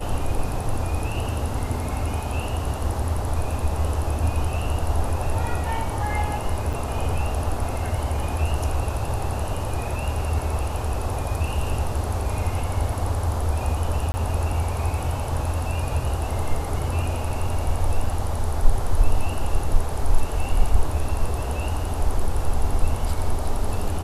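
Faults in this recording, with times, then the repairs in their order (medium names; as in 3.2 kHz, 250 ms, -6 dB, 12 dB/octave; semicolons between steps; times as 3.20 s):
6.73–6.74 s: dropout 6 ms
14.12–14.14 s: dropout 20 ms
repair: interpolate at 6.73 s, 6 ms; interpolate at 14.12 s, 20 ms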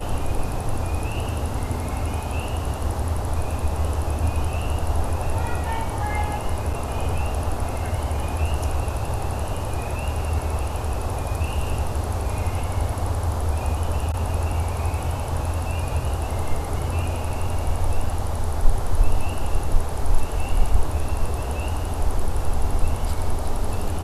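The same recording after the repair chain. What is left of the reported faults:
nothing left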